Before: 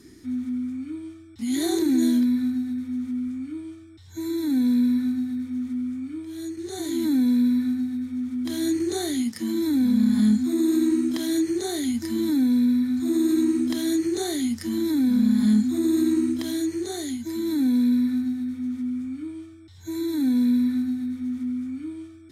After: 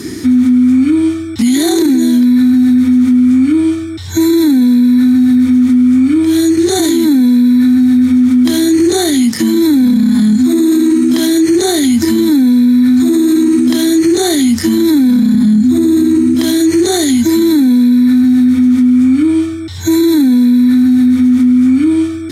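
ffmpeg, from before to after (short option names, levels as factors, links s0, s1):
-filter_complex "[0:a]asettb=1/sr,asplit=3[s0][s1][s2];[s0]atrim=end=15.344[s3];[s1]atrim=start=15.34:end=16.35,asetpts=PTS-STARTPTS,afade=t=in:d=0.004:c=qsin,afade=t=out:st=1.006:d=0.004:c=qsin,bass=f=250:g=9,treble=f=4000:g=-1[s4];[s2]atrim=start=16.346[s5];[s3][s4]acrossfade=d=0.004:c1=hsin:c2=qsin[s6];[s6][s5]acrossfade=d=0.004:c1=qsin:c2=hsin,highpass=90,acompressor=threshold=0.0398:ratio=2.5,alimiter=level_in=28.2:limit=0.891:release=50:level=0:latency=1,volume=0.708"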